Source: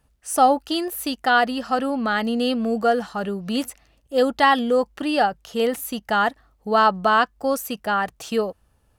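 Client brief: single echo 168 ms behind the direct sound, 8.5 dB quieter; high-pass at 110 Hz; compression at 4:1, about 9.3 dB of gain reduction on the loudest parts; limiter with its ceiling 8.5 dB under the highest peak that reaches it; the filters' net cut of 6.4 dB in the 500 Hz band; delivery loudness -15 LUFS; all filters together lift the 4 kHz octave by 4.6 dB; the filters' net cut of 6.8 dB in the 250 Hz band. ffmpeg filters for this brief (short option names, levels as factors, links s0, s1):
-af "highpass=110,equalizer=f=250:t=o:g=-6,equalizer=f=500:t=o:g=-6.5,equalizer=f=4000:t=o:g=6.5,acompressor=threshold=0.0631:ratio=4,alimiter=limit=0.112:level=0:latency=1,aecho=1:1:168:0.376,volume=5.31"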